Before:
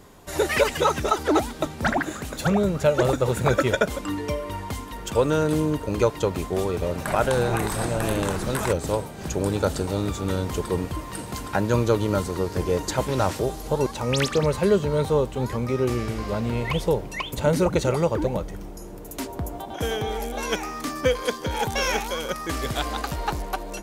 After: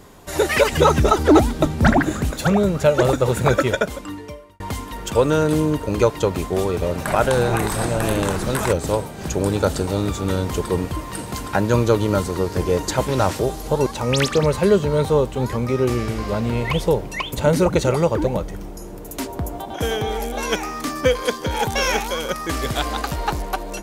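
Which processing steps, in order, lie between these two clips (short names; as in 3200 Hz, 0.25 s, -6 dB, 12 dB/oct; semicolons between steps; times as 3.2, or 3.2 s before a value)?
0.72–2.31 low shelf 320 Hz +11 dB; 3.48–4.6 fade out; gain +4 dB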